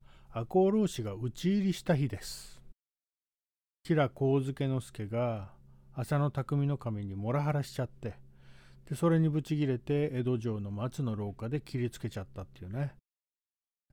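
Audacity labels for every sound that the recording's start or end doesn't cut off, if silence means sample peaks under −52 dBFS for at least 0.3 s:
3.850000	12.980000	sound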